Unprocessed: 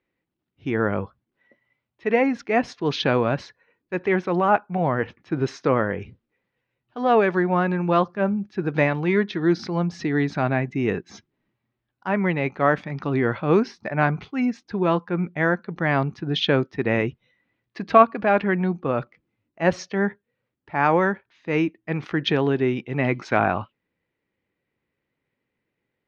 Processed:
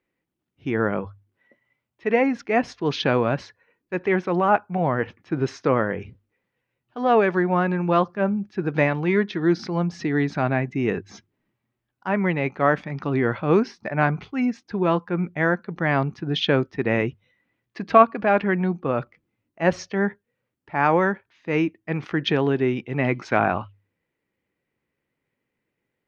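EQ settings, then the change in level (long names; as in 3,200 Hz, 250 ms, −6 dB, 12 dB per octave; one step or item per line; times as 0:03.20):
parametric band 3,900 Hz −2.5 dB 0.32 octaves
mains-hum notches 50/100 Hz
0.0 dB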